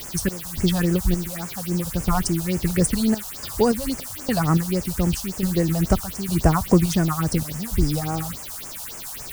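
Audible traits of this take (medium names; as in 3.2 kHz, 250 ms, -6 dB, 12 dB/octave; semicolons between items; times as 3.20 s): random-step tremolo, depth 95%; a quantiser's noise floor 6-bit, dither triangular; phasing stages 4, 3.6 Hz, lowest notch 320–3900 Hz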